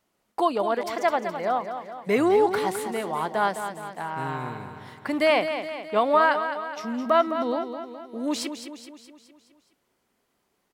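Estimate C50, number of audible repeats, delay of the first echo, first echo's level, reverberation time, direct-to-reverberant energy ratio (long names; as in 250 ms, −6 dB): no reverb audible, 5, 210 ms, −9.0 dB, no reverb audible, no reverb audible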